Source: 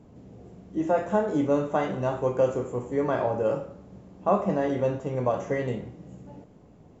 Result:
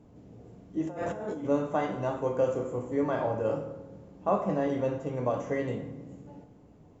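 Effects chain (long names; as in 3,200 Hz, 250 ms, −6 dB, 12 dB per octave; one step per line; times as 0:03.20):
0:00.87–0:01.45: compressor whose output falls as the input rises −33 dBFS, ratio −1
feedback delay network reverb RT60 1.3 s, low-frequency decay 1.4×, high-frequency decay 0.6×, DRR 8.5 dB
level −4 dB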